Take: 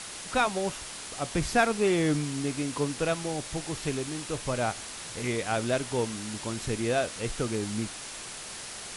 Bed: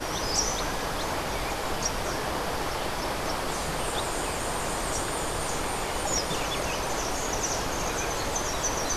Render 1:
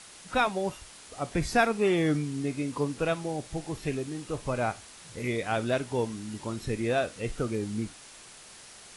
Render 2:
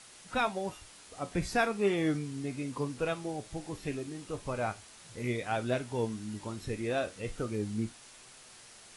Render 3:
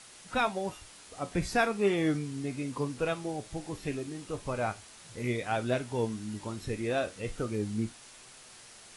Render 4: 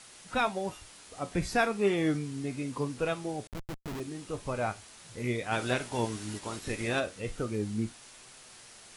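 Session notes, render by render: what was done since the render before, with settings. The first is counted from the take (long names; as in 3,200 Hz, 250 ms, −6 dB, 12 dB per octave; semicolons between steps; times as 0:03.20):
noise reduction from a noise print 9 dB
flanger 0.36 Hz, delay 7.6 ms, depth 3.6 ms, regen +64%
level +1.5 dB
0:03.47–0:04.00: comparator with hysteresis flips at −35 dBFS; 0:05.51–0:06.99: ceiling on every frequency bin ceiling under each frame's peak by 13 dB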